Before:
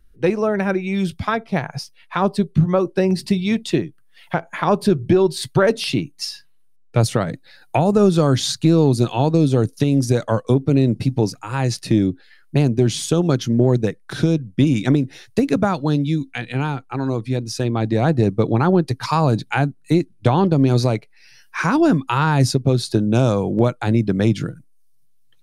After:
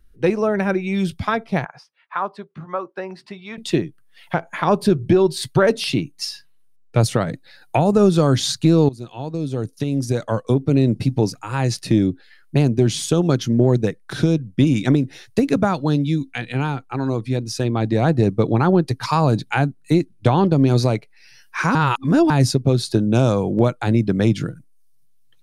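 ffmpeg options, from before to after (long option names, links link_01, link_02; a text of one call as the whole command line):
ffmpeg -i in.wav -filter_complex "[0:a]asettb=1/sr,asplit=3[link_01][link_02][link_03];[link_01]atrim=end=1.654[link_04];[link_02]atrim=start=1.65:end=3.58,asetpts=PTS-STARTPTS,afade=type=in:duration=0.004:curve=qsin,afade=type=out:start_time=1.926:duration=0.004:curve=qsin,bandpass=frequency=1200:width_type=q:width=1.5[link_05];[link_03]atrim=start=3.576[link_06];[link_04][link_05]acrossfade=duration=0.004:curve1=hsin:curve2=qsin[link_07];[link_07][link_06]acrossfade=duration=0.004:curve1=qsin:curve2=hsin,asplit=4[link_08][link_09][link_10][link_11];[link_08]atrim=end=8.89,asetpts=PTS-STARTPTS,afade=type=out:start_time=8.886:duration=0.004:curve=hsin:silence=0.105925[link_12];[link_09]atrim=start=8.89:end=21.752,asetpts=PTS-STARTPTS,afade=type=in:duration=1.99:silence=0.105925[link_13];[link_10]atrim=start=21.748:end=22.302,asetpts=PTS-STARTPTS,areverse[link_14];[link_11]atrim=start=22.298[link_15];[link_12][link_13]concat=n=2:v=0:a=1[link_16];[link_16][link_14]acrossfade=duration=0.004:curve1=hsin:curve2=hsin[link_17];[link_17][link_15]acrossfade=duration=0.004:curve1=hsin:curve2=hsin" out.wav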